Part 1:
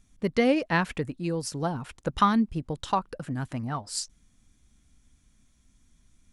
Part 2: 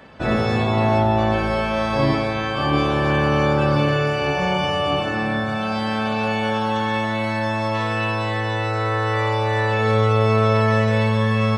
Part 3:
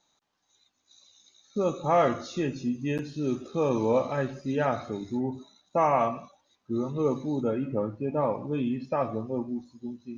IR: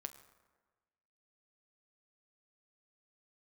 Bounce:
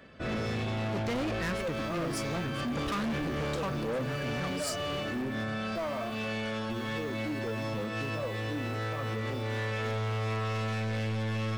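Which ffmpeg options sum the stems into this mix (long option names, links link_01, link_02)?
-filter_complex "[0:a]adelay=700,volume=-2.5dB[link_01];[1:a]asoftclip=type=tanh:threshold=-17.5dB,volume=-10dB,asplit=2[link_02][link_03];[link_03]volume=-5dB[link_04];[2:a]highpass=frequency=75:width=0.5412,highpass=frequency=75:width=1.3066,acrusher=bits=7:mix=0:aa=0.000001,aphaser=in_gain=1:out_gain=1:delay=3.3:decay=0.57:speed=0.76:type=sinusoidal,volume=-10dB,asplit=2[link_05][link_06];[link_06]apad=whole_len=510528[link_07];[link_02][link_07]sidechaincompress=threshold=-37dB:ratio=8:attack=8.2:release=123[link_08];[3:a]atrim=start_sample=2205[link_09];[link_04][link_09]afir=irnorm=-1:irlink=0[link_10];[link_01][link_08][link_05][link_10]amix=inputs=4:normalize=0,equalizer=frequency=870:width=3.7:gain=-12.5,asoftclip=type=hard:threshold=-29.5dB"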